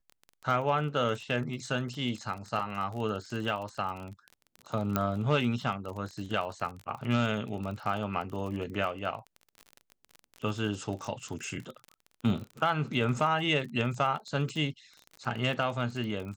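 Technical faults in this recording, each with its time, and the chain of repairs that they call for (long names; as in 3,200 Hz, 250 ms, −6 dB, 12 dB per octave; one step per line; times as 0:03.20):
surface crackle 29 per second −36 dBFS
0:04.96: click −13 dBFS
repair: click removal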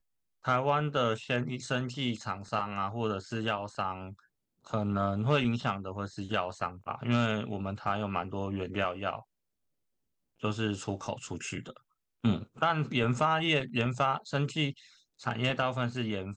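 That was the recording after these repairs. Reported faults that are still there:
none of them is left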